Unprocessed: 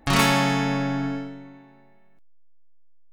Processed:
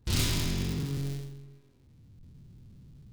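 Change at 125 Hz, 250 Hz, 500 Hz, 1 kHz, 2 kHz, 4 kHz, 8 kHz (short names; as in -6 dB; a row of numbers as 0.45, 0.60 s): -3.5, -11.5, -13.5, -22.0, -15.5, -7.0, -4.0 dB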